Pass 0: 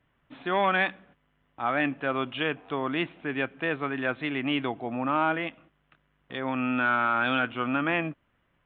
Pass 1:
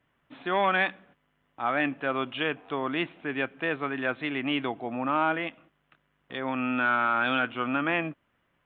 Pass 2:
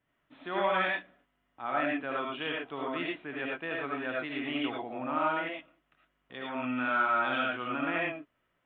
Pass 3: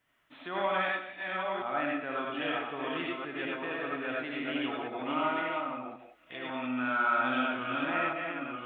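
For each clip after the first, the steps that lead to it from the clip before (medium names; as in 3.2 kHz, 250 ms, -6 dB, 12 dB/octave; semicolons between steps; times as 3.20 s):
bass shelf 100 Hz -9 dB
reverberation, pre-delay 35 ms, DRR -2.5 dB; trim -8.5 dB
chunks repeated in reverse 542 ms, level -4 dB; gated-style reverb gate 220 ms rising, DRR 9.5 dB; tape noise reduction on one side only encoder only; trim -2 dB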